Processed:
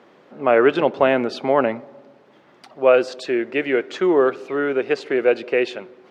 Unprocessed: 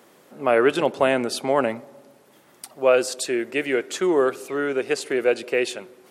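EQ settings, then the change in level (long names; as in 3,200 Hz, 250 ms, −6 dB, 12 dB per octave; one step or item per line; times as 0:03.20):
high-frequency loss of the air 220 metres
parametric band 75 Hz −3.5 dB 2.1 octaves
+4.0 dB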